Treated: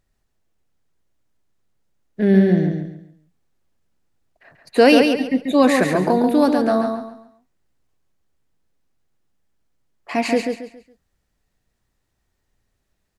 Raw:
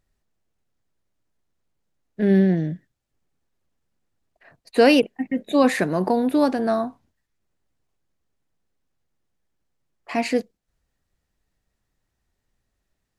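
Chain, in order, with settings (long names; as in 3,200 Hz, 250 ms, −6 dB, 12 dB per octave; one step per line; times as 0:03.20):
repeating echo 138 ms, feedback 31%, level −5 dB
level +2.5 dB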